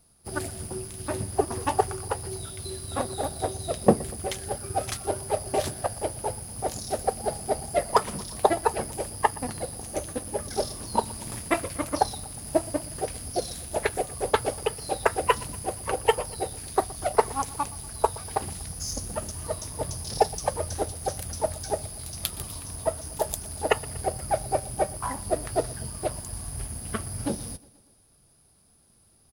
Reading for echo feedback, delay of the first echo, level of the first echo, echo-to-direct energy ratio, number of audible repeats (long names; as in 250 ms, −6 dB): 58%, 120 ms, −21.0 dB, −19.0 dB, 3